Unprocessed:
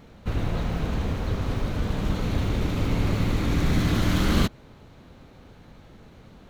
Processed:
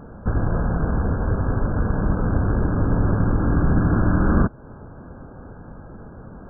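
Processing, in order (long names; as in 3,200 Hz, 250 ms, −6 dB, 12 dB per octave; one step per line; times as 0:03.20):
loose part that buzzes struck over −26 dBFS, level −17 dBFS
in parallel at +2.5 dB: downward compressor, threshold −32 dBFS, peak gain reduction 15.5 dB
on the sum: linear-phase brick-wall low-pass 1,700 Hz
level +2 dB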